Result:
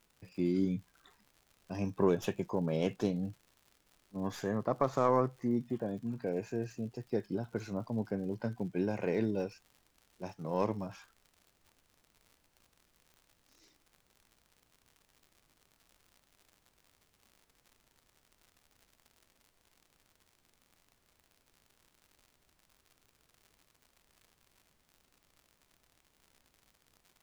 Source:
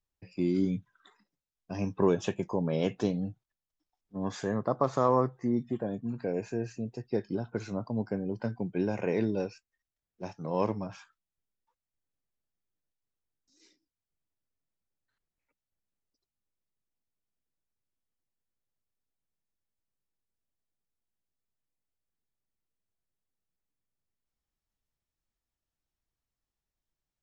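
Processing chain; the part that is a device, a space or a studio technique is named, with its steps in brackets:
record under a worn stylus (stylus tracing distortion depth 0.047 ms; surface crackle 110 per second −46 dBFS; pink noise bed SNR 35 dB)
level −3 dB

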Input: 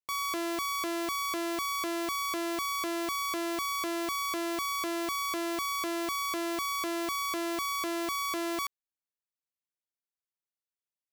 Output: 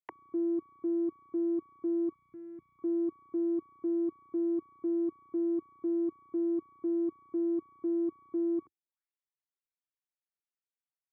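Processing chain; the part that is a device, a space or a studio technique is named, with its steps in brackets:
envelope filter bass rig (envelope-controlled low-pass 330–4,700 Hz down, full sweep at −41 dBFS; loudspeaker in its box 80–2,300 Hz, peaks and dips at 92 Hz −7 dB, 200 Hz −7 dB, 580 Hz −9 dB)
0:02.14–0:02.79: flat-topped bell 550 Hz −15.5 dB 2.3 octaves
level −5.5 dB

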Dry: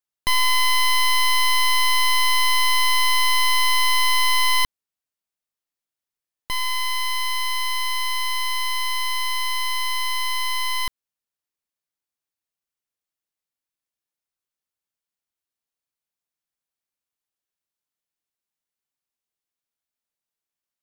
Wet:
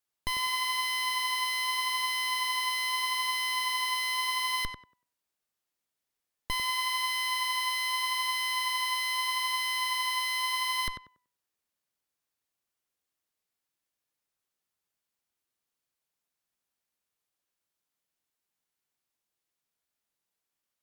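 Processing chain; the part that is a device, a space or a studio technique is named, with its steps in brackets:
rockabilly slapback (tube saturation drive 33 dB, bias 0.6; tape delay 96 ms, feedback 26%, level −3.5 dB, low-pass 1,800 Hz)
level +5.5 dB

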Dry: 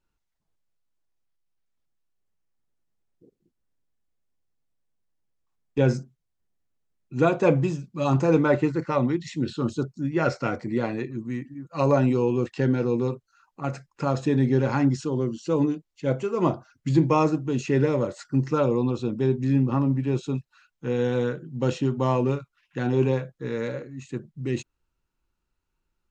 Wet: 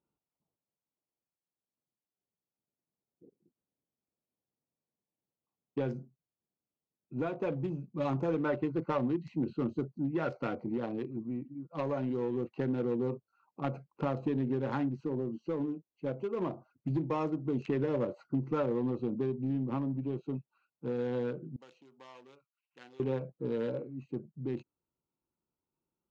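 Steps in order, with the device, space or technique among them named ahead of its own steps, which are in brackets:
adaptive Wiener filter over 25 samples
AM radio (band-pass filter 150–4,400 Hz; downward compressor 6 to 1, threshold −26 dBFS, peak gain reduction 11.5 dB; soft clipping −20.5 dBFS, distortion −21 dB; amplitude tremolo 0.22 Hz, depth 34%)
0:21.56–0:23.00: first difference

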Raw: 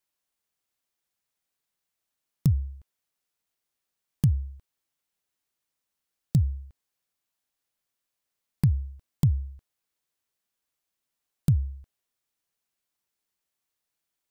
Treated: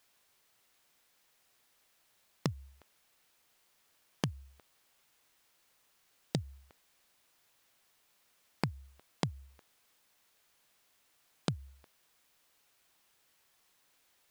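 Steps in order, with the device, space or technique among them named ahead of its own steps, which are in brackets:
baby monitor (band-pass filter 450–4,300 Hz; downward compressor, threshold −43 dBFS, peak gain reduction 8.5 dB; white noise bed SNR 26 dB)
level +13.5 dB

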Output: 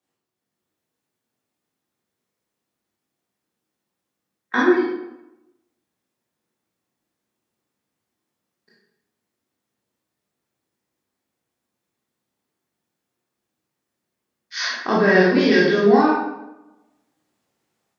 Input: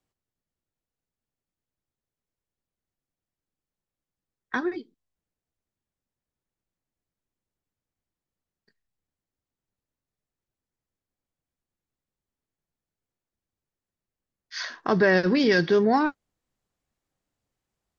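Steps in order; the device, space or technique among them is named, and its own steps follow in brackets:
far laptop microphone (convolution reverb RT60 0.95 s, pre-delay 16 ms, DRR −6.5 dB; high-pass filter 190 Hz 12 dB per octave; automatic gain control gain up to 5.5 dB)
level −1 dB

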